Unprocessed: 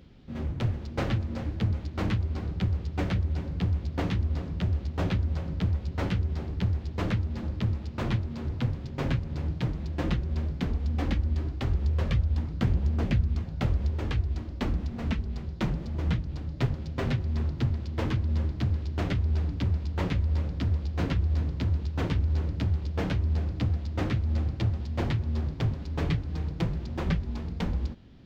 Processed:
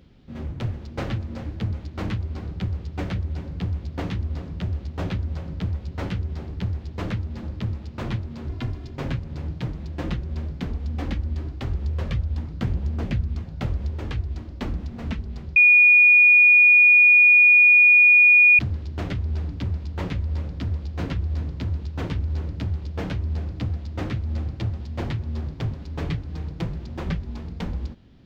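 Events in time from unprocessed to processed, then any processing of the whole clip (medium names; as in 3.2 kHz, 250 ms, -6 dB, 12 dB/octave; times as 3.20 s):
8.49–8.96 s: comb 2.9 ms
15.56–18.59 s: bleep 2.45 kHz -10 dBFS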